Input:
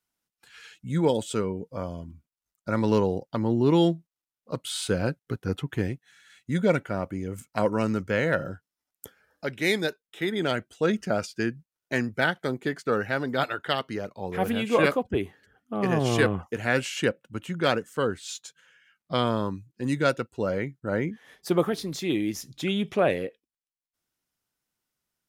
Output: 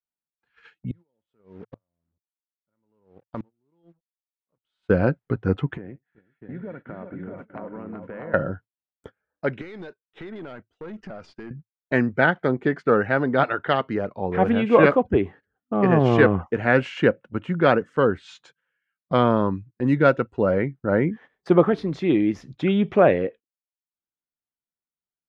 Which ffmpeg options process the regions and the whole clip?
ffmpeg -i in.wav -filter_complex "[0:a]asettb=1/sr,asplit=3[link_01][link_02][link_03];[link_01]atrim=end=0.914[link_04];[link_02]atrim=start=0.91:end=4.9,asetpts=PTS-STARTPTS,afade=type=in:duration=0.004:curve=qsin,afade=type=out:start_time=3.986:duration=0.004:curve=qsin,acompressor=threshold=-39dB:ratio=2:attack=3.2:release=140:knee=1:detection=peak,acrusher=bits=7:mix=0:aa=0.5,aeval=exprs='val(0)*pow(10,-36*if(lt(mod(-1.2*n/s,1),2*abs(-1.2)/1000),1-mod(-1.2*n/s,1)/(2*abs(-1.2)/1000),(mod(-1.2*n/s,1)-2*abs(-1.2)/1000)/(1-2*abs(-1.2)/1000))/20)':channel_layout=same[link_05];[link_03]atrim=start=4.896[link_06];[link_04][link_05]acrossfade=duration=0.004:curve1=hsin:curve2=qsin[link_07];[link_07][link_06]acrossfade=duration=0.004:curve1=qsin:curve2=hsin,asettb=1/sr,asplit=3[link_08][link_09][link_10];[link_08]atrim=end=5.774[link_11];[link_09]atrim=start=5.77:end=8.34,asetpts=PTS-STARTPTS,afade=type=in:duration=0.004:curve=qsin,afade=type=out:start_time=2.566:duration=0.004:curve=qsin,highpass=140,lowpass=2100,acompressor=threshold=-41dB:ratio=6:attack=3.2:release=140:knee=1:detection=peak,aecho=1:1:75|378|404|643|825:0.141|0.447|0.106|0.631|0.237,atrim=end_sample=113337[link_12];[link_10]atrim=start=8.336[link_13];[link_11][link_12]acrossfade=duration=0.004:curve1=hsin:curve2=qsin[link_14];[link_14][link_13]acrossfade=duration=0.004:curve1=qsin:curve2=hsin,asettb=1/sr,asplit=3[link_15][link_16][link_17];[link_15]atrim=end=9.614[link_18];[link_16]atrim=start=9.61:end=11.51,asetpts=PTS-STARTPTS,afade=type=in:duration=0.004:curve=qsin,afade=type=out:start_time=1.896:duration=0.004:curve=qsin,equalizer=frequency=5000:width_type=o:width=1.1:gain=5.5,acompressor=threshold=-35dB:ratio=20:attack=3.2:release=140:knee=1:detection=peak,aeval=exprs='(tanh(79.4*val(0)+0.15)-tanh(0.15))/79.4':channel_layout=same[link_19];[link_17]atrim=start=11.506[link_20];[link_18][link_19]acrossfade=duration=0.004:curve1=hsin:curve2=qsin[link_21];[link_21][link_20]acrossfade=duration=0.004:curve1=qsin:curve2=hsin,agate=range=-22dB:threshold=-46dB:ratio=16:detection=peak,lowpass=1800,equalizer=frequency=110:width=7.9:gain=-4,volume=7dB" out.wav

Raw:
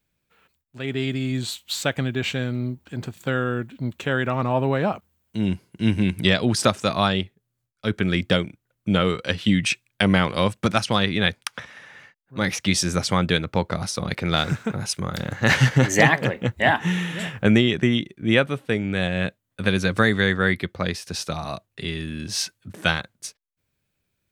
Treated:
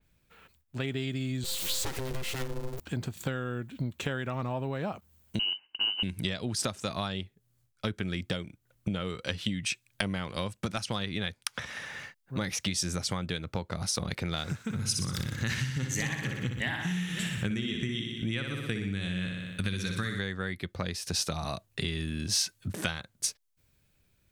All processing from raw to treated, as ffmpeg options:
ffmpeg -i in.wav -filter_complex "[0:a]asettb=1/sr,asplit=3[link_01][link_02][link_03];[link_01]atrim=end=1.444[link_04];[link_02]atrim=start=1.44:end=2.8,asetpts=PTS-STARTPTS,afade=type=in:duration=0.004:curve=qsin,afade=type=out:start_time=1.356:duration=0.004:curve=qsin,aeval=exprs='val(0)+0.5*0.0398*sgn(val(0))':channel_layout=same,aeval=exprs='val(0)*sin(2*PI*260*n/s)':channel_layout=same,aeval=exprs='(tanh(28.2*val(0)+0.6)-tanh(0.6))/28.2':channel_layout=same[link_05];[link_03]atrim=start=2.796[link_06];[link_04][link_05]acrossfade=duration=0.004:curve1=hsin:curve2=qsin[link_07];[link_07][link_06]acrossfade=duration=0.004:curve1=qsin:curve2=hsin,asettb=1/sr,asplit=3[link_08][link_09][link_10];[link_08]atrim=end=5.394[link_11];[link_09]atrim=start=5.39:end=6.03,asetpts=PTS-STARTPTS,afade=type=in:duration=0.004:curve=qsin,afade=type=out:start_time=0.636:duration=0.004:curve=qsin,agate=range=-8dB:threshold=-59dB:ratio=16:release=100:detection=peak,lowpass=frequency=2600:width_type=q:width=0.5098,lowpass=frequency=2600:width_type=q:width=0.6013,lowpass=frequency=2600:width_type=q:width=0.9,lowpass=frequency=2600:width_type=q:width=2.563,afreqshift=-3100[link_12];[link_10]atrim=start=6.026[link_13];[link_11][link_12]acrossfade=duration=0.004:curve1=hsin:curve2=qsin[link_14];[link_14][link_13]acrossfade=duration=0.004:curve1=qsin:curve2=hsin,asettb=1/sr,asplit=3[link_15][link_16][link_17];[link_15]atrim=end=14.624[link_18];[link_16]atrim=start=14.62:end=20.19,asetpts=PTS-STARTPTS,afade=type=in:duration=0.004:curve=qsin,afade=type=out:start_time=5.566:duration=0.004:curve=qsin,equalizer=frequency=650:width_type=o:width=1.3:gain=-13,aecho=1:1:61|122|183|244|305|366|427|488:0.501|0.296|0.174|0.103|0.0607|0.0358|0.0211|0.0125,atrim=end_sample=245637[link_19];[link_17]atrim=start=20.186[link_20];[link_18][link_19]acrossfade=duration=0.004:curve1=hsin:curve2=qsin[link_21];[link_21][link_20]acrossfade=duration=0.004:curve1=qsin:curve2=hsin,lowshelf=frequency=79:gain=10.5,acompressor=threshold=-33dB:ratio=10,adynamicequalizer=threshold=0.002:dfrequency=3500:dqfactor=0.7:tfrequency=3500:tqfactor=0.7:attack=5:release=100:ratio=0.375:range=3:mode=boostabove:tftype=highshelf,volume=3.5dB" out.wav

